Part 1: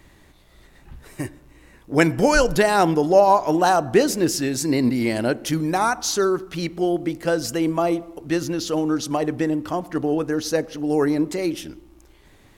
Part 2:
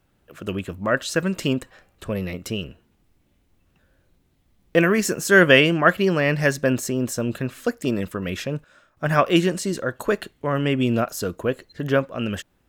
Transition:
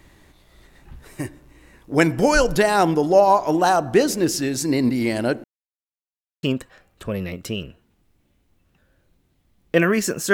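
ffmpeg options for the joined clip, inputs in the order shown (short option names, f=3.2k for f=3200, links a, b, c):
-filter_complex "[0:a]apad=whole_dur=10.33,atrim=end=10.33,asplit=2[a][b];[a]atrim=end=5.44,asetpts=PTS-STARTPTS,afade=t=out:st=5.436:d=0.004:c=hsin[c];[b]atrim=start=5.44:end=6.43,asetpts=PTS-STARTPTS,volume=0[d];[1:a]atrim=start=1.44:end=5.34,asetpts=PTS-STARTPTS,afade=t=in:d=0.004:c=hsin[e];[c][d][e]concat=n=3:v=0:a=1"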